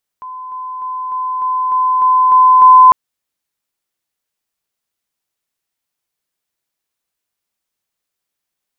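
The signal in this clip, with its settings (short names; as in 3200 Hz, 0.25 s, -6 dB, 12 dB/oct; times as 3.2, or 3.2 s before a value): level ladder 1020 Hz -25.5 dBFS, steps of 3 dB, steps 9, 0.30 s 0.00 s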